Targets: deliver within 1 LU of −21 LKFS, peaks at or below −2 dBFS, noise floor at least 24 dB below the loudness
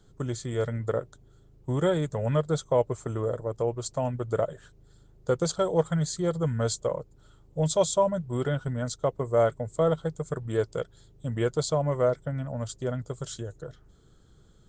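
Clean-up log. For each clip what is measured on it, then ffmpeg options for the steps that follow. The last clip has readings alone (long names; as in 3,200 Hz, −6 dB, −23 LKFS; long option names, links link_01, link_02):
integrated loudness −28.5 LKFS; sample peak −10.0 dBFS; target loudness −21.0 LKFS
→ -af "volume=7.5dB"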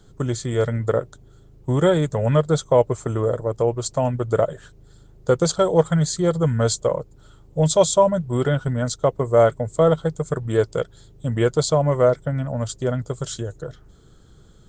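integrated loudness −21.0 LKFS; sample peak −2.5 dBFS; background noise floor −50 dBFS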